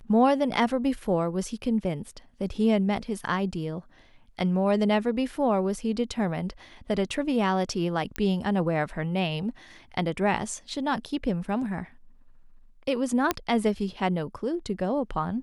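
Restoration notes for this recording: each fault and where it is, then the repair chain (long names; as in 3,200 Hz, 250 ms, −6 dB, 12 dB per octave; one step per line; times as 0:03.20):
0:08.16: click −14 dBFS
0:13.31: click −8 dBFS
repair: click removal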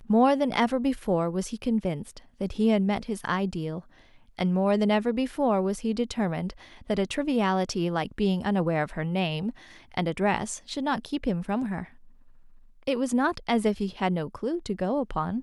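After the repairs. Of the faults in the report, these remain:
0:08.16: click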